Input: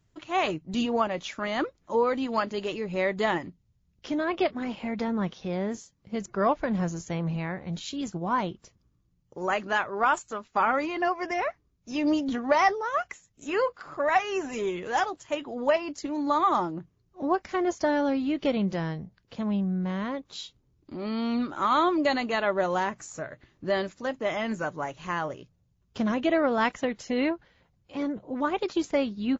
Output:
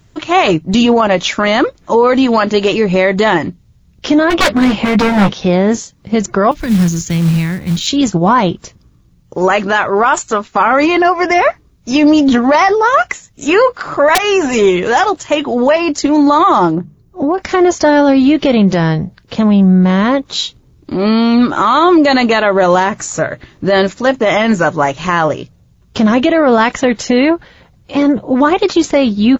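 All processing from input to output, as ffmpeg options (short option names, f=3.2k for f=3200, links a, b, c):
-filter_complex "[0:a]asettb=1/sr,asplit=3[a][b][c];[a]atrim=end=4.304[d];[b]atrim=start=4.3:end=5.32,asetpts=PTS-STARTPTS,afade=t=in:d=0.004:c=qsin,afade=t=out:st=1.016:d=0.004:c=qsin,lowshelf=f=230:g=4,aeval=exprs='0.0531*(abs(mod(val(0)/0.0531+3,4)-2)-1)':c=same,asplit=2[e][f];[f]adelay=15,volume=-6dB[g];[e][g]amix=inputs=2:normalize=0,atrim=end_sample=44982[h];[c]atrim=start=5.316[i];[d][h]acrossfade=d=0.004:c1=hsin:c2=qsin[j];[j][i]acrossfade=d=0.004:c1=qsin:c2=hsin,asettb=1/sr,asplit=3[k][l][m];[k]atrim=end=6.514[n];[l]atrim=start=6.51:end=7.87,asetpts=PTS-STARTPTS,afade=t=in:d=0.004:c=qsin,afade=t=out:st=1.356:d=0.004:c=qsin,equalizer=f=720:t=o:w=1.8:g=-14.5,acrossover=split=290|3000[o][p][q];[p]acompressor=threshold=-47dB:ratio=2:attack=3.2:release=140:knee=2.83:detection=peak[r];[o][r][q]amix=inputs=3:normalize=0,acrusher=bits=5:mode=log:mix=0:aa=0.000001[s];[m]atrim=start=7.866[t];[n][s]acrossfade=d=0.004:c1=hsin:c2=qsin[u];[u][t]acrossfade=d=0.004:c1=qsin:c2=hsin,asettb=1/sr,asplit=3[v][w][x];[v]atrim=end=14.154[y];[w]atrim=start=14.15:end=14.55,asetpts=PTS-STARTPTS,afade=t=in:d=0.004:c=qsin,afade=t=out:st=0.396:d=0.004:c=qsin,acompressor=threshold=-28dB:ratio=3:attack=3.2:release=140:knee=1:detection=peak,aeval=exprs='(mod(14.1*val(0)+1,2)-1)/14.1':c=same[z];[x]atrim=start=14.546[aa];[y][z]acrossfade=d=0.004:c1=hsin:c2=qsin[ab];[ab][aa]acrossfade=d=0.004:c1=qsin:c2=hsin,asettb=1/sr,asplit=3[ac][ad][ae];[ac]atrim=end=16.754[af];[ad]atrim=start=16.75:end=17.38,asetpts=PTS-STARTPTS,afade=t=in:d=0.004:c=qsin,afade=t=out:st=0.626:d=0.004:c=qsin,equalizer=f=3.3k:w=0.36:g=-9.5,bandreject=f=50:t=h:w=6,bandreject=f=100:t=h:w=6,bandreject=f=150:t=h:w=6,bandreject=f=200:t=h:w=6,acompressor=threshold=-30dB:ratio=6:attack=3.2:release=140:knee=1:detection=peak[ag];[ae]atrim=start=17.376[ah];[af][ag]acrossfade=d=0.004:c1=hsin:c2=qsin[ai];[ai][ah]acrossfade=d=0.004:c1=qsin:c2=hsin,equalizer=f=3.8k:t=o:w=0.24:g=2,alimiter=level_in=21.5dB:limit=-1dB:release=50:level=0:latency=1,volume=-1dB"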